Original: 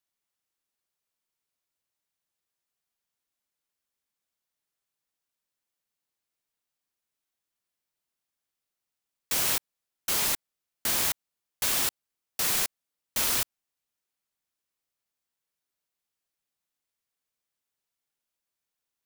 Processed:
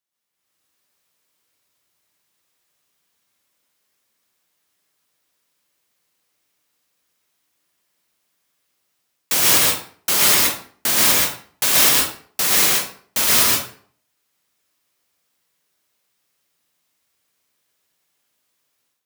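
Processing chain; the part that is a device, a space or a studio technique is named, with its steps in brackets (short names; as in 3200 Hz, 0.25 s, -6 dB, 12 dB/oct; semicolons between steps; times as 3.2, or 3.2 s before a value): far laptop microphone (reverb RT60 0.50 s, pre-delay 0.111 s, DRR -3 dB; HPF 110 Hz 12 dB/oct; AGC gain up to 12 dB)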